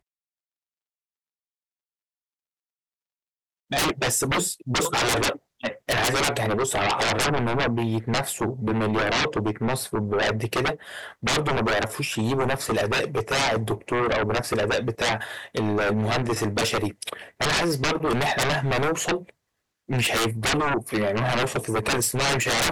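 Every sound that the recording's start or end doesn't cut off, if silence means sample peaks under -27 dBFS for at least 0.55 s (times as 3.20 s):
3.72–19.17 s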